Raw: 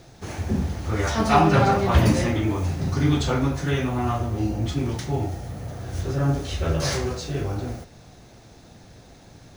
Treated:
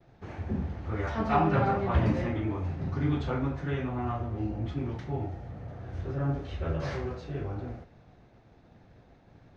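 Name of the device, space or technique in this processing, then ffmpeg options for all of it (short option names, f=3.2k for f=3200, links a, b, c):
hearing-loss simulation: -af "lowpass=2.3k,agate=range=-33dB:threshold=-46dB:ratio=3:detection=peak,volume=-7.5dB"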